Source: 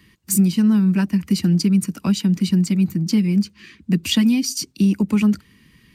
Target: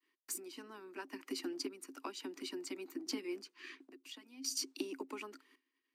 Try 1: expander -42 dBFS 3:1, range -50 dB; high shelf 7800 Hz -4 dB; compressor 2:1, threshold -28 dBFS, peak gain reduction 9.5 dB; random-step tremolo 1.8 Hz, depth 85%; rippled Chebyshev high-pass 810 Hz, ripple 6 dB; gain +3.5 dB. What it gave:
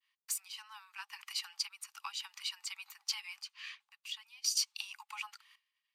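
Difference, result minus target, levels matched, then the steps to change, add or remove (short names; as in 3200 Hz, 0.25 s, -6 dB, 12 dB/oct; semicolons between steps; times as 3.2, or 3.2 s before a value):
compressor: peak gain reduction -4.5 dB; 1000 Hz band -2.5 dB
change: compressor 2:1, threshold -37 dBFS, peak gain reduction 14 dB; change: rippled Chebyshev high-pass 260 Hz, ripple 6 dB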